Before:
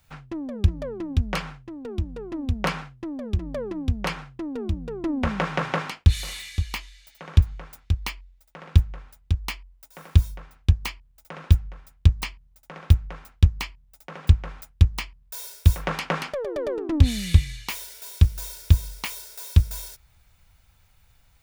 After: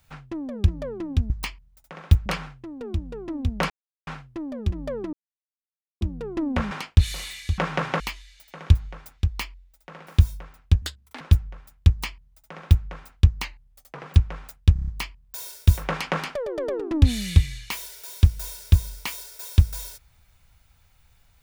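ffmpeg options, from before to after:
ffmpeg -i in.wav -filter_complex "[0:a]asplit=19[link_01][link_02][link_03][link_04][link_05][link_06][link_07][link_08][link_09][link_10][link_11][link_12][link_13][link_14][link_15][link_16][link_17][link_18][link_19];[link_01]atrim=end=1.302[link_20];[link_02]atrim=start=12.088:end=13.052[link_21];[link_03]atrim=start=1.298:end=2.74,asetpts=PTS-STARTPTS,afade=type=out:start_time=1.438:duration=0.004:curve=hsin,apad=pad_dur=0.37[link_22];[link_04]atrim=start=2.74:end=3.8,asetpts=PTS-STARTPTS,afade=type=in:duration=0.004:curve=hsin,afade=type=out:start_time=1.056:duration=0.004:curve=hsin[link_23];[link_05]atrim=start=3.8:end=4.68,asetpts=PTS-STARTPTS,volume=0[link_24];[link_06]atrim=start=4.68:end=5.382,asetpts=PTS-STARTPTS,afade=type=in:duration=0.004:curve=hsin[link_25];[link_07]atrim=start=5.798:end=6.672[link_26];[link_08]atrim=start=5.378:end=5.802[link_27];[link_09]atrim=start=6.668:end=8.742[link_28];[link_10]atrim=start=10.038:end=10.794[link_29];[link_11]atrim=start=10.79:end=11.4,asetpts=PTS-STARTPTS,asetrate=69678,aresample=44100[link_30];[link_12]atrim=start=11.396:end=13.644[link_31];[link_13]atrim=start=13.64:end=14.19,asetpts=PTS-STARTPTS,asetrate=39690,aresample=44100[link_32];[link_14]atrim=start=14.186:end=14.892[link_33];[link_15]atrim=start=14.858:end=14.892[link_34];[link_16]atrim=start=14.858:end=14.892[link_35];[link_17]atrim=start=14.858:end=14.892[link_36];[link_18]atrim=start=14.858:end=14.892[link_37];[link_19]atrim=start=14.858[link_38];[link_20][link_21]acrossfade=duration=0.004:curve1=hsin:curve2=hsin[link_39];[link_22][link_23][link_24][link_25]concat=n=4:v=0:a=1[link_40];[link_39][link_40]acrossfade=duration=0.004:curve1=hsin:curve2=hsin[link_41];[link_41][link_26]acrossfade=duration=0.004:curve1=hsin:curve2=hsin[link_42];[link_42][link_27]acrossfade=duration=0.004:curve1=hsin:curve2=hsin[link_43];[link_43][link_28]acrossfade=duration=0.004:curve1=hsin:curve2=hsin[link_44];[link_44][link_29]acrossfade=duration=0.004:curve1=hsin:curve2=hsin[link_45];[link_45][link_30]acrossfade=duration=0.004:curve1=hsin:curve2=hsin[link_46];[link_46][link_31]acrossfade=duration=0.004:curve1=hsin:curve2=hsin[link_47];[link_47][link_32]acrossfade=duration=0.004:curve1=hsin:curve2=hsin[link_48];[link_48][link_33]acrossfade=duration=0.004:curve1=hsin:curve2=hsin[link_49];[link_49][link_34]acrossfade=duration=0.004:curve1=hsin:curve2=hsin[link_50];[link_50][link_35]acrossfade=duration=0.004:curve1=hsin:curve2=hsin[link_51];[link_51][link_36]acrossfade=duration=0.004:curve1=hsin:curve2=hsin[link_52];[link_52][link_37]acrossfade=duration=0.004:curve1=hsin:curve2=hsin[link_53];[link_53][link_38]acrossfade=duration=0.004:curve1=hsin:curve2=hsin" out.wav

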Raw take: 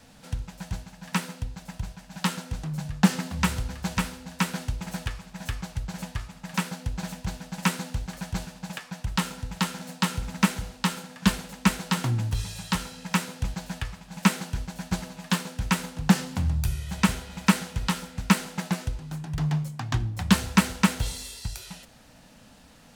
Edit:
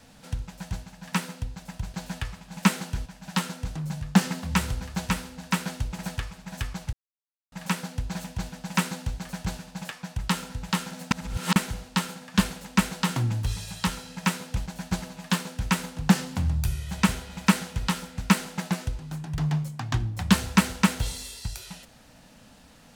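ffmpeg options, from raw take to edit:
ffmpeg -i in.wav -filter_complex "[0:a]asplit=8[link_01][link_02][link_03][link_04][link_05][link_06][link_07][link_08];[link_01]atrim=end=1.942[link_09];[link_02]atrim=start=13.538:end=14.662[link_10];[link_03]atrim=start=1.938:end=5.81,asetpts=PTS-STARTPTS,afade=type=out:start_time=3.868:duration=0.004:curve=hsin[link_11];[link_04]atrim=start=5.81:end=6.4,asetpts=PTS-STARTPTS,volume=0[link_12];[link_05]atrim=start=6.4:end=9.992,asetpts=PTS-STARTPTS,afade=type=in:duration=0.004:curve=hsin[link_13];[link_06]atrim=start=9.988:end=10.442,asetpts=PTS-STARTPTS,areverse[link_14];[link_07]atrim=start=10.438:end=13.542[link_15];[link_08]atrim=start=14.658[link_16];[link_09][link_10]acrossfade=duration=0.004:curve1=hsin:curve2=hsin[link_17];[link_11][link_12][link_13]concat=n=3:v=0:a=1[link_18];[link_17][link_18]acrossfade=duration=0.004:curve1=hsin:curve2=hsin[link_19];[link_19][link_14]acrossfade=duration=0.004:curve1=hsin:curve2=hsin[link_20];[link_20][link_15]acrossfade=duration=0.004:curve1=hsin:curve2=hsin[link_21];[link_21][link_16]acrossfade=duration=0.004:curve1=hsin:curve2=hsin" out.wav

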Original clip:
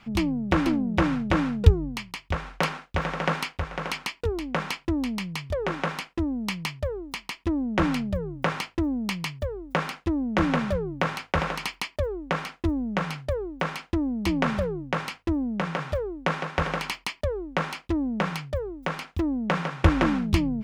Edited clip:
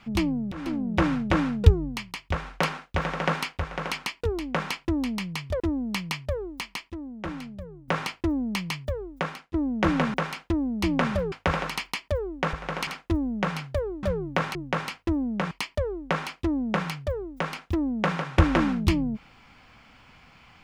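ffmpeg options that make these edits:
ffmpeg -i in.wav -filter_complex "[0:a]asplit=13[link_01][link_02][link_03][link_04][link_05][link_06][link_07][link_08][link_09][link_10][link_11][link_12][link_13];[link_01]atrim=end=0.52,asetpts=PTS-STARTPTS,afade=type=out:start_time=0.516:duration=0.004:curve=hsin:silence=0.0749894[link_14];[link_02]atrim=start=0.52:end=5.602,asetpts=PTS-STARTPTS,afade=type=in:duration=0.59:curve=qsin:silence=0.0749894[link_15];[link_03]atrim=start=6.138:end=7.44,asetpts=PTS-STARTPTS,afade=type=out:start_time=1.042:duration=0.26:curve=log:silence=0.281838[link_16];[link_04]atrim=start=7.44:end=8.42,asetpts=PTS-STARTPTS,volume=-11dB[link_17];[link_05]atrim=start=8.42:end=10.08,asetpts=PTS-STARTPTS,afade=type=in:duration=0.26:curve=log:silence=0.281838,afade=type=out:start_time=1.14:duration=0.52:silence=0.133352[link_18];[link_06]atrim=start=10.08:end=10.682,asetpts=PTS-STARTPTS,afade=type=in:duration=0.004:curve=hsin:silence=0.133352[link_19];[link_07]atrim=start=13.568:end=14.752[link_20];[link_08]atrim=start=11.198:end=12.412[link_21];[link_09]atrim=start=3.618:end=3.962[link_22];[link_10]atrim=start=12.408:end=13.572[link_23];[link_11]atrim=start=10.678:end=11.202[link_24];[link_12]atrim=start=14.748:end=15.712[link_25];[link_13]atrim=start=16.968[link_26];[link_14][link_15]concat=n=2:v=0:a=1[link_27];[link_16][link_17][link_18][link_19]concat=n=4:v=0:a=1[link_28];[link_27][link_28]acrossfade=duration=0.004:curve1=hsin:curve2=hsin[link_29];[link_29][link_20]acrossfade=duration=0.004:curve1=hsin:curve2=hsin[link_30];[link_30][link_21]acrossfade=duration=0.004:curve1=hsin:curve2=hsin[link_31];[link_31][link_22]acrossfade=duration=0.004:curve1=hsin:curve2=hsin[link_32];[link_32][link_23]acrossfade=duration=0.004:curve1=hsin:curve2=hsin[link_33];[link_33][link_24]acrossfade=duration=0.004:curve1=hsin:curve2=hsin[link_34];[link_34][link_25]acrossfade=duration=0.004:curve1=hsin:curve2=hsin[link_35];[link_35][link_26]acrossfade=duration=0.004:curve1=hsin:curve2=hsin" out.wav

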